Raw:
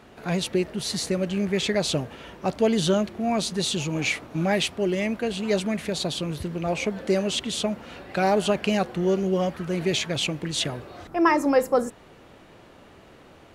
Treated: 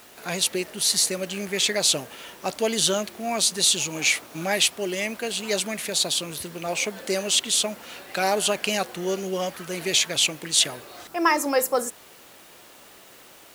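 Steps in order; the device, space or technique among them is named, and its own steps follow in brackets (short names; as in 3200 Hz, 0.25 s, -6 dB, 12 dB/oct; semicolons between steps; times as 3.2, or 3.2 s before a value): turntable without a phono preamp (RIAA curve recording; white noise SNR 27 dB)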